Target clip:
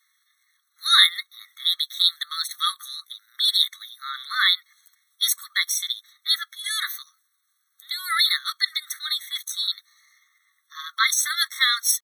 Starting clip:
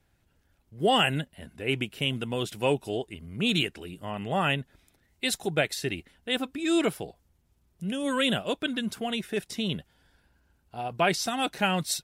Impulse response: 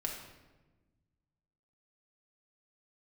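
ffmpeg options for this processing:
-af "highshelf=frequency=2100:gain=7.5,asetrate=57191,aresample=44100,atempo=0.771105,afftfilt=real='re*eq(mod(floor(b*sr/1024/1100),2),1)':imag='im*eq(mod(floor(b*sr/1024/1100),2),1)':win_size=1024:overlap=0.75,volume=7dB"

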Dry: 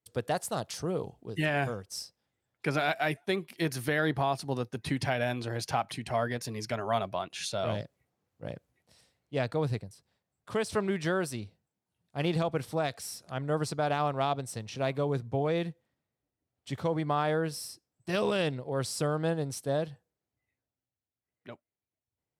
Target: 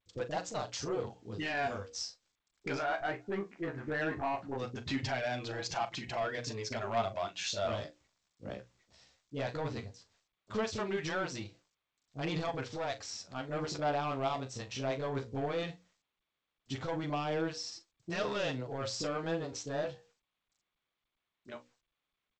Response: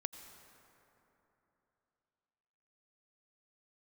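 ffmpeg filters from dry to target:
-filter_complex "[0:a]asettb=1/sr,asplit=3[link_01][link_02][link_03];[link_01]atrim=end=2.764[link_04];[link_02]atrim=start=2.76:end=4.55,asetpts=PTS-STARTPTS,afade=type=in:duration=0.004:curve=qsin,afade=type=out:start_time=1.786:duration=0.004:curve=qsin,lowpass=frequency=1800:width=0.5412,lowpass=frequency=1800:width=1.3066[link_05];[link_03]atrim=start=4.546[link_06];[link_04][link_05]acrossfade=duration=0.004:curve1=hsin:curve2=qsin[link_07];[link_07][link_06]acrossfade=duration=0.004:curve1=qsin:curve2=hsin,equalizer=frequency=150:width=3.1:gain=-10,bandreject=frequency=60:width_type=h:width=6,bandreject=frequency=120:width_type=h:width=6,bandreject=frequency=180:width_type=h:width=6,bandreject=frequency=240:width_type=h:width=6,bandreject=frequency=300:width_type=h:width=6,bandreject=frequency=360:width_type=h:width=6,bandreject=frequency=420:width_type=h:width=6,bandreject=frequency=480:width_type=h:width=6,bandreject=frequency=540:width_type=h:width=6,asplit=2[link_08][link_09];[link_09]alimiter=level_in=0.5dB:limit=-24dB:level=0:latency=1:release=225,volume=-0.5dB,volume=-2dB[link_10];[link_08][link_10]amix=inputs=2:normalize=0,asoftclip=type=tanh:threshold=-22.5dB,flanger=delay=5.8:depth=9.6:regen=32:speed=0.17:shape=sinusoidal,acrusher=bits=11:mix=0:aa=0.000001,asplit=2[link_11][link_12];[link_12]adelay=40,volume=-12.5dB[link_13];[link_11][link_13]amix=inputs=2:normalize=0,acrossover=split=430[link_14][link_15];[link_15]adelay=30[link_16];[link_14][link_16]amix=inputs=2:normalize=0" -ar 16000 -c:a g722

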